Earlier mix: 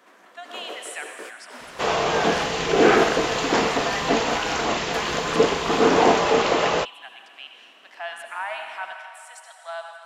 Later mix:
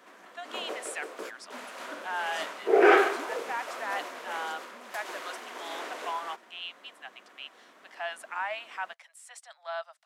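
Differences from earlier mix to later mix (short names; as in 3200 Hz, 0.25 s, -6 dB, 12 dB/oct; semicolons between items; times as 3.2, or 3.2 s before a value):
second sound: muted; reverb: off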